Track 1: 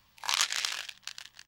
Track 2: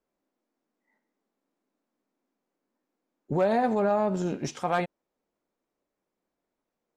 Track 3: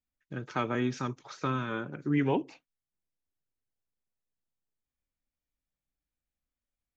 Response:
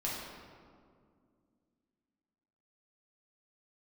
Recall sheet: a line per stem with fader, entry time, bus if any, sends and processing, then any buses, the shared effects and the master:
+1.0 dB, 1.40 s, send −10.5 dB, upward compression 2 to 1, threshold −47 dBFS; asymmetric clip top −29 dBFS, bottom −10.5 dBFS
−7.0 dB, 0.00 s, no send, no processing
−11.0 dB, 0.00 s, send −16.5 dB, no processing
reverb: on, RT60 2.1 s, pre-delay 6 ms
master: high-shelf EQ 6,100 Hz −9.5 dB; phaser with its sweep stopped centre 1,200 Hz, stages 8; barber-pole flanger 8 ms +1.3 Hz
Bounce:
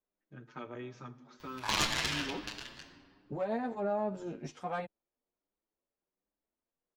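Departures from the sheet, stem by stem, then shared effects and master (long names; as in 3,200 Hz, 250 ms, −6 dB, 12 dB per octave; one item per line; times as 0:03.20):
stem 1: send −10.5 dB → −3.5 dB
master: missing phaser with its sweep stopped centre 1,200 Hz, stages 8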